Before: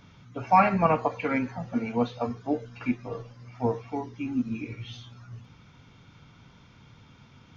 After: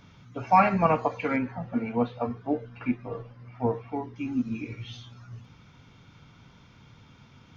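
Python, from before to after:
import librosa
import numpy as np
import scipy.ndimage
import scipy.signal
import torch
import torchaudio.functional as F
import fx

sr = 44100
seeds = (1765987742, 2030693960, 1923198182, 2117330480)

y = fx.lowpass(x, sr, hz=2700.0, slope=12, at=(1.36, 4.16))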